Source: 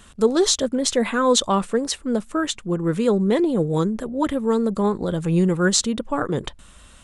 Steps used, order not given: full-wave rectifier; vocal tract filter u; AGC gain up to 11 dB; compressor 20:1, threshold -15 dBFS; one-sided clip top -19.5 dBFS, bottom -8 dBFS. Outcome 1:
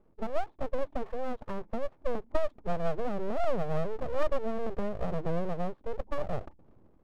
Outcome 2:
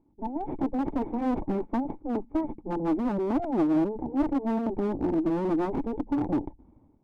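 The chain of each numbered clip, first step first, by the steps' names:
AGC > compressor > vocal tract filter > one-sided clip > full-wave rectifier; full-wave rectifier > vocal tract filter > AGC > compressor > one-sided clip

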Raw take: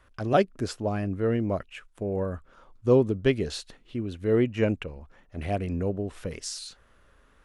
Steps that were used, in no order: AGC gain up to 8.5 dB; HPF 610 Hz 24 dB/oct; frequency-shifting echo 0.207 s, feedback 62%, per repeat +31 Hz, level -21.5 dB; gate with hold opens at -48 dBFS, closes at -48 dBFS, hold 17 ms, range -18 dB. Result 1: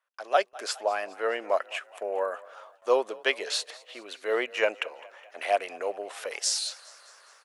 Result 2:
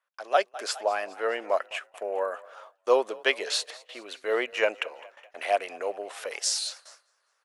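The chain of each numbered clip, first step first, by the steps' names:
AGC > HPF > frequency-shifting echo > gate with hold; HPF > frequency-shifting echo > gate with hold > AGC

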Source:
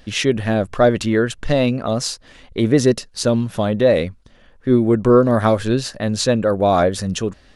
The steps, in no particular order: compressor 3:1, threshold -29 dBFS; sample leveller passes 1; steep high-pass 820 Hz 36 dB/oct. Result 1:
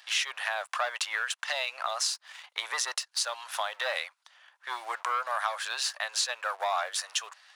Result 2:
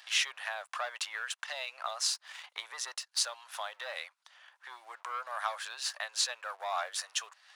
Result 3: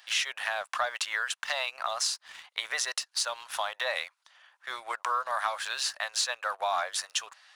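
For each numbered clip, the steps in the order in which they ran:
sample leveller > steep high-pass > compressor; sample leveller > compressor > steep high-pass; steep high-pass > sample leveller > compressor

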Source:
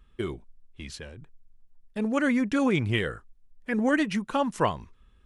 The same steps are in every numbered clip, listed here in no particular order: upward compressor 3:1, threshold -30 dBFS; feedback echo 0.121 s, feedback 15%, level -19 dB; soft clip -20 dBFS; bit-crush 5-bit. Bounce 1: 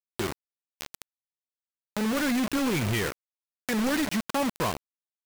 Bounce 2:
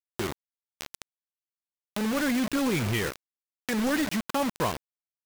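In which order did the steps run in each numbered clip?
soft clip > feedback echo > bit-crush > upward compressor; feedback echo > bit-crush > soft clip > upward compressor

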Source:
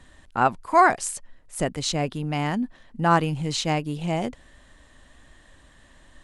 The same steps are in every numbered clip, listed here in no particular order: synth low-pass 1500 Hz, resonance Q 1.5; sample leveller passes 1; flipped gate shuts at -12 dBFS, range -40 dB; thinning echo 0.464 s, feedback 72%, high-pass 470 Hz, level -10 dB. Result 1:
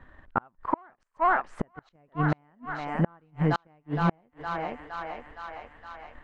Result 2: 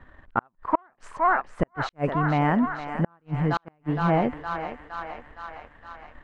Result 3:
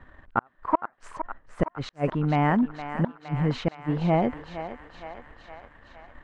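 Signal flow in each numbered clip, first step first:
sample leveller > thinning echo > flipped gate > synth low-pass; thinning echo > flipped gate > sample leveller > synth low-pass; flipped gate > thinning echo > sample leveller > synth low-pass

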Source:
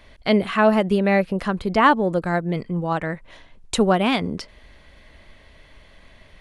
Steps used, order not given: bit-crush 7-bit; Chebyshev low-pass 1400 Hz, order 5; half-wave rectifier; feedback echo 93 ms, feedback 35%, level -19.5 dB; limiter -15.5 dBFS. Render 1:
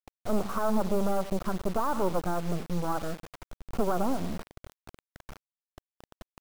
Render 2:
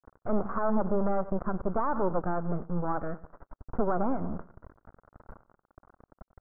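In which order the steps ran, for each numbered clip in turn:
feedback echo > half-wave rectifier > limiter > Chebyshev low-pass > bit-crush; bit-crush > feedback echo > half-wave rectifier > limiter > Chebyshev low-pass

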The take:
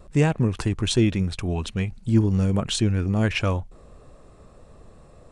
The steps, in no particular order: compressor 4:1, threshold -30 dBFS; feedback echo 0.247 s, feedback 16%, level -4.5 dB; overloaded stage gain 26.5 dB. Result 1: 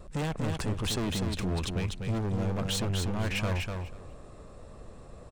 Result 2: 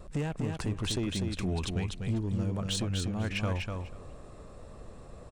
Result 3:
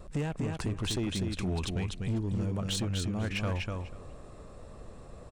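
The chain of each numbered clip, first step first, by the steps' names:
overloaded stage > compressor > feedback echo; compressor > overloaded stage > feedback echo; compressor > feedback echo > overloaded stage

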